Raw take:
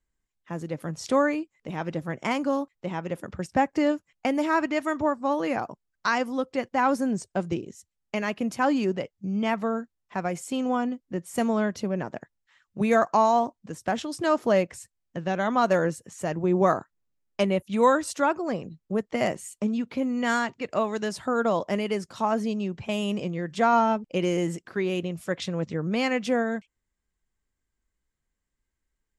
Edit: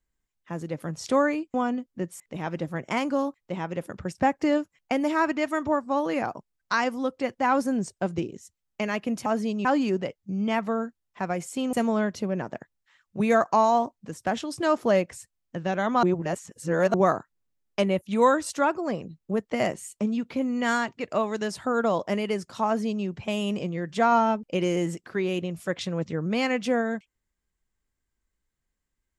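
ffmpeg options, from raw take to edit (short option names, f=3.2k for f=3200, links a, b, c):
-filter_complex "[0:a]asplit=8[a][b][c][d][e][f][g][h];[a]atrim=end=1.542[i];[b]atrim=start=10.678:end=11.342[j];[c]atrim=start=1.538:end=8.602[k];[d]atrim=start=22.268:end=22.662[l];[e]atrim=start=8.598:end=10.682[m];[f]atrim=start=11.338:end=15.642[n];[g]atrim=start=15.638:end=16.552,asetpts=PTS-STARTPTS,areverse[o];[h]atrim=start=16.548[p];[i][j]acrossfade=d=0.004:c1=hsin:c2=hsin[q];[q][k]acrossfade=d=0.004:c1=hsin:c2=hsin[r];[r][l]acrossfade=d=0.004:c1=hsin:c2=hsin[s];[s][m]acrossfade=d=0.004:c1=hsin:c2=hsin[t];[t][n]acrossfade=d=0.004:c1=hsin:c2=hsin[u];[u][o]acrossfade=d=0.004:c1=hsin:c2=hsin[v];[v][p]acrossfade=d=0.004:c1=hsin:c2=hsin"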